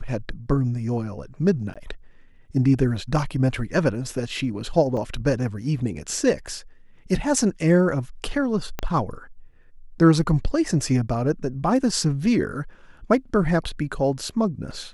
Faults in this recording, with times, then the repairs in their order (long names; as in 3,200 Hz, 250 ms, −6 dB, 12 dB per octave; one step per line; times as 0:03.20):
0:01.74–0:01.76: drop-out 16 ms
0:04.97: drop-out 3 ms
0:08.79: click −12 dBFS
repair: click removal
repair the gap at 0:01.74, 16 ms
repair the gap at 0:04.97, 3 ms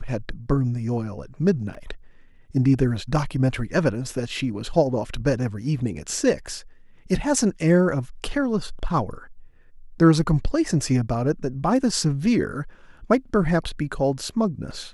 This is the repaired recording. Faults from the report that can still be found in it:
0:08.79: click